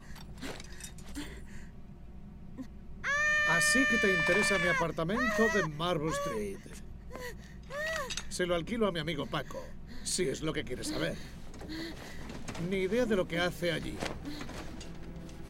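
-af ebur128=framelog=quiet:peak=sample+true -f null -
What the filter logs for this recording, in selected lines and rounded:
Integrated loudness:
  I:         -30.9 LUFS
  Threshold: -42.7 LUFS
Loudness range:
  LRA:         9.0 LU
  Threshold: -52.1 LUFS
  LRA low:   -36.6 LUFS
  LRA high:  -27.6 LUFS
Sample peak:
  Peak:      -16.0 dBFS
True peak:
  Peak:      -15.9 dBFS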